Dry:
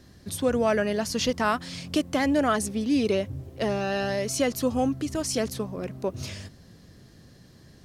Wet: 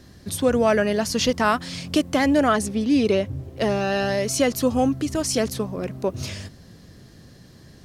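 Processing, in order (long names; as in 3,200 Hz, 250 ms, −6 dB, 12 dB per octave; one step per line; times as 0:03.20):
0:02.49–0:03.57: high-shelf EQ 6,500 Hz −5.5 dB
level +4.5 dB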